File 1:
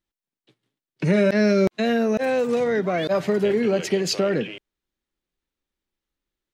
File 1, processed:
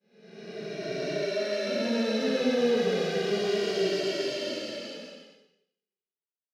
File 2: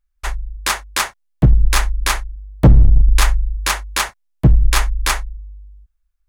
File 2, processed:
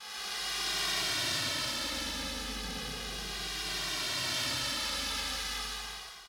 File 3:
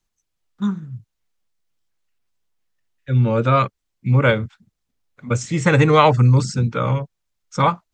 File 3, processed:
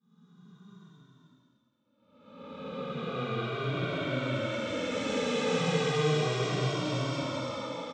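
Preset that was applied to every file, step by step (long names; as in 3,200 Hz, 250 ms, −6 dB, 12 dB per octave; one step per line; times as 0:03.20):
spectrum smeared in time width 1,450 ms
dynamic equaliser 980 Hz, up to −6 dB, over −48 dBFS, Q 2.1
in parallel at −9 dB: dead-zone distortion −33.5 dBFS
on the sum: downward expander −36 dBFS
downward compressor, threshold −19 dBFS
high-pass filter 270 Hz 12 dB per octave
flat-topped bell 4,000 Hz +8 dB 1.2 octaves
reverb whose tail is shaped and stops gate 240 ms flat, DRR −6 dB
barber-pole flanger 2 ms −0.35 Hz
level −5.5 dB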